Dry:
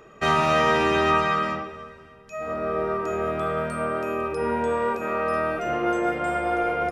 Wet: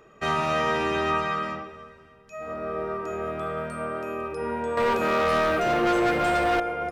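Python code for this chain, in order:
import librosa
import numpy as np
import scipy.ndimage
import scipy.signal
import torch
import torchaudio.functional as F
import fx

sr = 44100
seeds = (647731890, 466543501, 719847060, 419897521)

y = fx.leveller(x, sr, passes=3, at=(4.77, 6.6))
y = F.gain(torch.from_numpy(y), -4.5).numpy()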